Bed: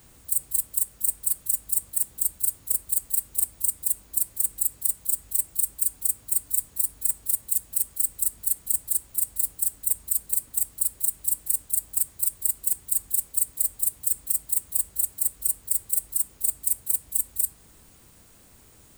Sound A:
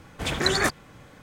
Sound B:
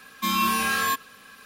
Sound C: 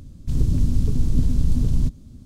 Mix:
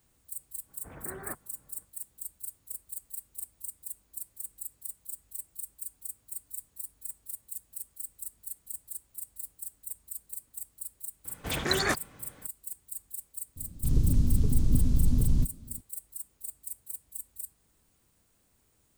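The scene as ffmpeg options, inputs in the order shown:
-filter_complex "[1:a]asplit=2[a][b];[0:a]volume=-15.5dB[c];[a]lowpass=f=1.7k:w=0.5412,lowpass=f=1.7k:w=1.3066,atrim=end=1.22,asetpts=PTS-STARTPTS,volume=-17dB,afade=t=in:d=0.05,afade=t=out:st=1.17:d=0.05,adelay=650[d];[b]atrim=end=1.22,asetpts=PTS-STARTPTS,volume=-4.5dB,afade=t=in:d=0.004:c=hsin,afade=t=out:st=1.216:d=0.004:c=hsin,adelay=11250[e];[3:a]atrim=end=2.25,asetpts=PTS-STARTPTS,volume=-4.5dB,afade=t=in:d=0.004:c=hsin,afade=t=out:st=2.246:d=0.004:c=hsin,adelay=13560[f];[c][d][e][f]amix=inputs=4:normalize=0"

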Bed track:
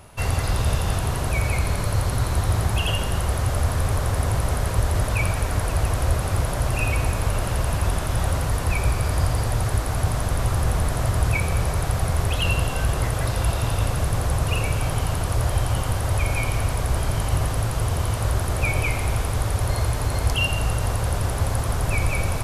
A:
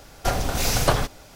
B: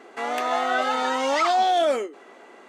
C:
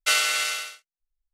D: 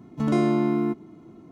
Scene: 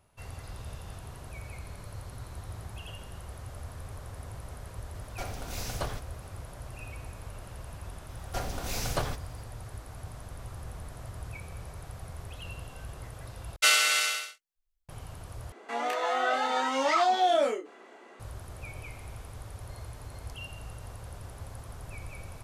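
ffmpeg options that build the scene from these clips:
-filter_complex "[1:a]asplit=2[a][b];[0:a]volume=-20dB[c];[2:a]aecho=1:1:14|30:0.355|0.631[d];[c]asplit=3[e][f][g];[e]atrim=end=13.564[h];[3:a]atrim=end=1.33,asetpts=PTS-STARTPTS,volume=-0.5dB[i];[f]atrim=start=14.886:end=15.524[j];[d]atrim=end=2.68,asetpts=PTS-STARTPTS,volume=-6dB[k];[g]atrim=start=18.196[l];[a]atrim=end=1.35,asetpts=PTS-STARTPTS,volume=-15dB,afade=t=in:d=0.004:c=hsin,afade=t=out:st=1.346:d=0.004:c=hsin,adelay=217413S[m];[b]atrim=end=1.35,asetpts=PTS-STARTPTS,volume=-11dB,afade=t=in:d=0.004:c=hsin,afade=t=out:st=1.346:d=0.004:c=hsin,adelay=8090[n];[h][i]acrossfade=d=0.004:c1=hsin:c2=hsin[o];[o][j]acrossfade=d=0.004:c1=hsin:c2=hsin[p];[p][k]acrossfade=d=0.004:c1=hsin:c2=hsin[q];[q][l]acrossfade=d=0.004:c1=hsin:c2=hsin[r];[r][m][n]amix=inputs=3:normalize=0"

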